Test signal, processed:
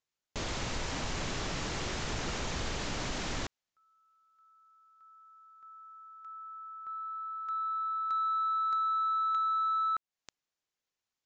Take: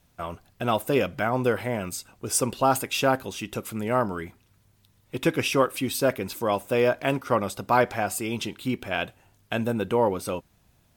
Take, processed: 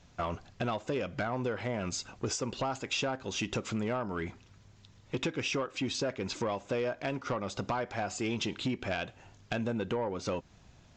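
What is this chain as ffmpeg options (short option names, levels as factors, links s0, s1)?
-af "acompressor=threshold=0.0251:ratio=20,aresample=16000,asoftclip=type=tanh:threshold=0.0355,aresample=44100,volume=1.78"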